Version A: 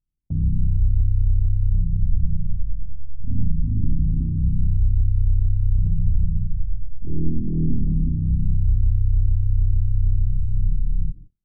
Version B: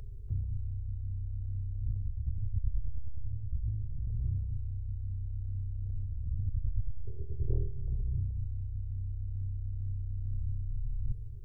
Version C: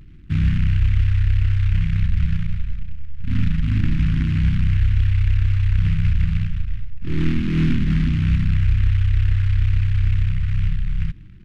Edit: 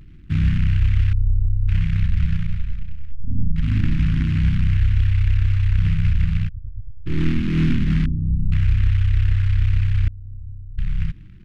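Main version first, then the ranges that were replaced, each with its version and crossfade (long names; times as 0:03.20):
C
0:01.13–0:01.68: punch in from A
0:03.12–0:03.56: punch in from A
0:06.49–0:07.06: punch in from B
0:08.06–0:08.52: punch in from A
0:10.08–0:10.78: punch in from B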